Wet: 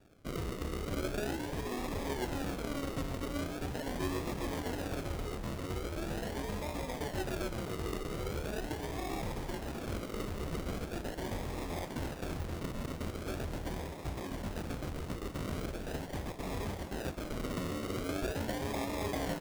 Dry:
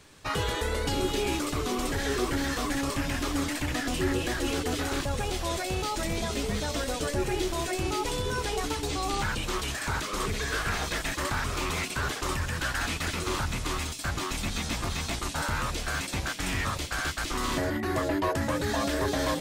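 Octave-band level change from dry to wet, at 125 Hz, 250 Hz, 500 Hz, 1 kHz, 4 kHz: -6.0 dB, -6.0 dB, -6.5 dB, -10.0 dB, -13.5 dB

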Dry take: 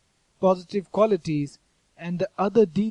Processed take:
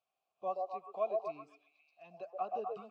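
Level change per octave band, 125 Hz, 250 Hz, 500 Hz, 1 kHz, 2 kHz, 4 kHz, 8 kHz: under -35 dB, -31.5 dB, -16.0 dB, -9.0 dB, -18.5 dB, under -20 dB, under -30 dB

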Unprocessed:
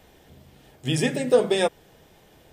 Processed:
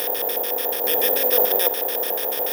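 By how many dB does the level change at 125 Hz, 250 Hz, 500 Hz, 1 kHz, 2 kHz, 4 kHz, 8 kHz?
under -20 dB, -9.5 dB, 0.0 dB, +6.0 dB, +2.5 dB, +5.0 dB, +8.5 dB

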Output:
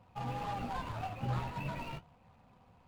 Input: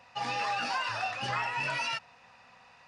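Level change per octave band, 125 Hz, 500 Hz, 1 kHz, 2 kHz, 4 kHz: +7.5 dB, -3.5 dB, -7.5 dB, -15.5 dB, -15.5 dB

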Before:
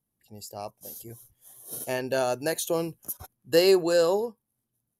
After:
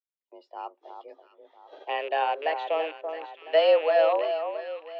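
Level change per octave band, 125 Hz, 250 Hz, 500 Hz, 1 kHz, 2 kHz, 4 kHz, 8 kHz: under -40 dB, -16.0 dB, +0.5 dB, +7.5 dB, +1.5 dB, -2.5 dB, under -40 dB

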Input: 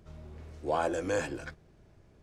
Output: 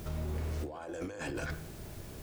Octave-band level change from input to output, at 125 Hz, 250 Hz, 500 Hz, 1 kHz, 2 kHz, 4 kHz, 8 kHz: +6.5 dB, -2.0 dB, -9.0 dB, -11.0 dB, -4.0 dB, -2.0 dB, -3.0 dB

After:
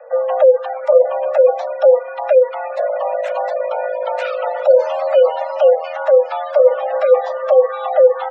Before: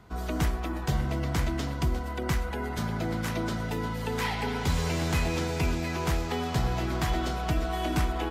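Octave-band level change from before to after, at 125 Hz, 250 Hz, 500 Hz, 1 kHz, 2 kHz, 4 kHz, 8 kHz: under -40 dB, under -25 dB, +24.0 dB, +11.5 dB, +3.5 dB, no reading, under -15 dB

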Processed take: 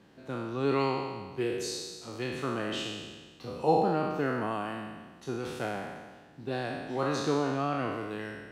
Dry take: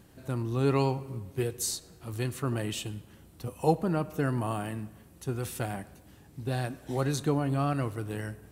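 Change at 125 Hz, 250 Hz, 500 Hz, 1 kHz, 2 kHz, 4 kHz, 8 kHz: -8.0 dB, -1.0 dB, +1.5 dB, +3.0 dB, +3.0 dB, +2.0 dB, -6.5 dB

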